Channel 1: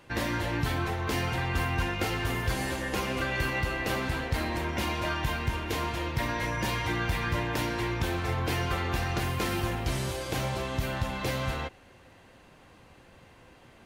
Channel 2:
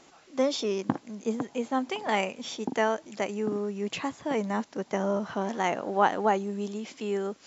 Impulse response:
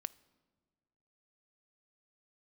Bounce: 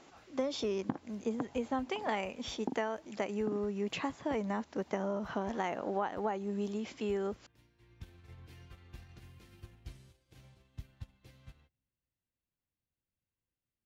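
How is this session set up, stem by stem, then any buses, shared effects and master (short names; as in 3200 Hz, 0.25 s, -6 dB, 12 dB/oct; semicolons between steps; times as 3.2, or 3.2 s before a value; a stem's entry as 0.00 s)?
-13.0 dB, 0.00 s, send -7.5 dB, bell 810 Hz -13 dB 2.9 oct; upward expander 2.5:1, over -42 dBFS; auto duck -18 dB, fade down 0.20 s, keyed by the second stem
-1.5 dB, 0.00 s, no send, compressor 10:1, threshold -28 dBFS, peak gain reduction 12.5 dB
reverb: on, RT60 1.6 s, pre-delay 3 ms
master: high shelf 5700 Hz -9 dB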